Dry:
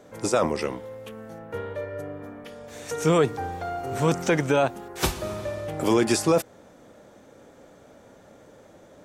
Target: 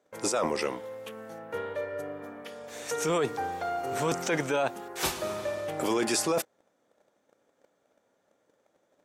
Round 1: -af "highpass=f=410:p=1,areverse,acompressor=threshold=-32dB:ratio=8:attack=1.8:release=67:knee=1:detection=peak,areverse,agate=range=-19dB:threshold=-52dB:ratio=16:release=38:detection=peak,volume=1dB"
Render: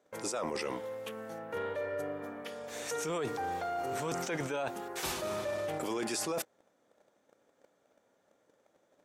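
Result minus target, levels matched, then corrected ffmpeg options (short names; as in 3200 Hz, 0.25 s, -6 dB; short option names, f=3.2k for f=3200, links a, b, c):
compressor: peak gain reduction +8 dB
-af "highpass=f=410:p=1,areverse,acompressor=threshold=-23dB:ratio=8:attack=1.8:release=67:knee=1:detection=peak,areverse,agate=range=-19dB:threshold=-52dB:ratio=16:release=38:detection=peak,volume=1dB"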